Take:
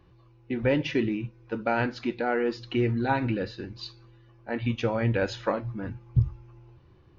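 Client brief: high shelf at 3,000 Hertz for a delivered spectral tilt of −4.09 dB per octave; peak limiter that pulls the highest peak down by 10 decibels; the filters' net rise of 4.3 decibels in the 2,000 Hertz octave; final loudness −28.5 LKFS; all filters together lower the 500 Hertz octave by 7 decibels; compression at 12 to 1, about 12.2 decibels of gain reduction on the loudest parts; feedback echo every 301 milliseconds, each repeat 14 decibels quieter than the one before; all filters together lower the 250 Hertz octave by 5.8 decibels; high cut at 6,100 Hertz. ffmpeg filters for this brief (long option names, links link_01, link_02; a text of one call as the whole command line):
ffmpeg -i in.wav -af "lowpass=6100,equalizer=frequency=250:width_type=o:gain=-5,equalizer=frequency=500:width_type=o:gain=-7.5,equalizer=frequency=2000:width_type=o:gain=5,highshelf=frequency=3000:gain=4,acompressor=threshold=-29dB:ratio=12,alimiter=level_in=4dB:limit=-24dB:level=0:latency=1,volume=-4dB,aecho=1:1:301|602:0.2|0.0399,volume=9.5dB" out.wav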